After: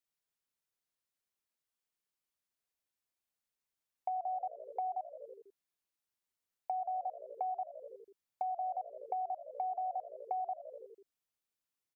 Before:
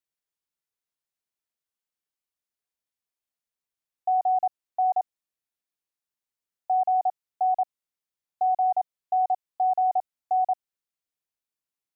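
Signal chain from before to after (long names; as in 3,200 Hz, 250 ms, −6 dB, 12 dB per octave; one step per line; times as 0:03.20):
on a send: echo with shifted repeats 82 ms, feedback 64%, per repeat −58 Hz, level −17 dB
on the sum: downward compressor, threshold −35 dBFS, peak gain reduction 13.5 dB
level −1 dB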